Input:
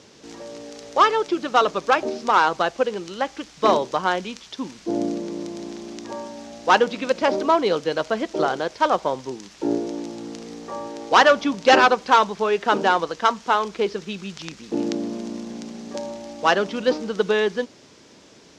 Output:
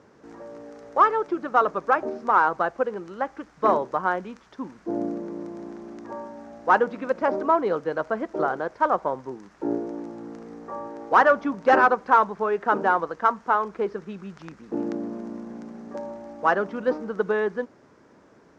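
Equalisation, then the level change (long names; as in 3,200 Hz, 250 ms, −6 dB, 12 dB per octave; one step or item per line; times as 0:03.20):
high shelf with overshoot 2,200 Hz −13.5 dB, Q 1.5
−4.0 dB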